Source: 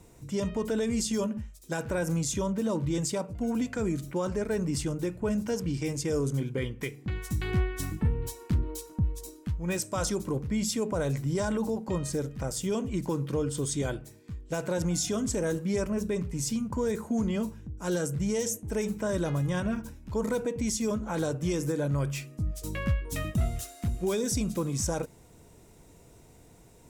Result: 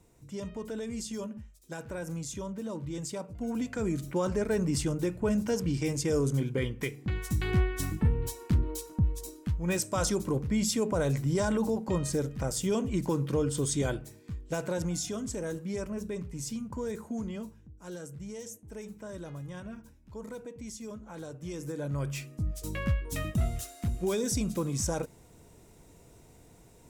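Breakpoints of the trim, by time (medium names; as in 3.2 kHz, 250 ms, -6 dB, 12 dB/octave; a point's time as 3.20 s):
2.90 s -8 dB
4.19 s +1 dB
14.32 s +1 dB
15.20 s -6 dB
17.06 s -6 dB
17.82 s -12.5 dB
21.28 s -12.5 dB
22.24 s -1 dB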